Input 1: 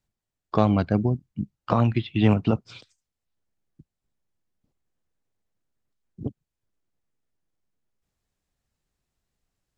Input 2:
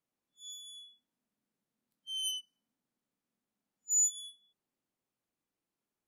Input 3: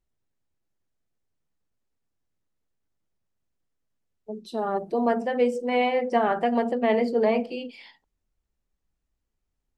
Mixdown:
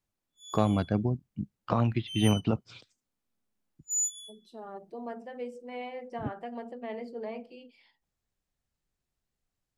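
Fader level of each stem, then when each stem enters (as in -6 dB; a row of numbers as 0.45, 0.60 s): -5.5, -1.0, -16.0 dB; 0.00, 0.00, 0.00 s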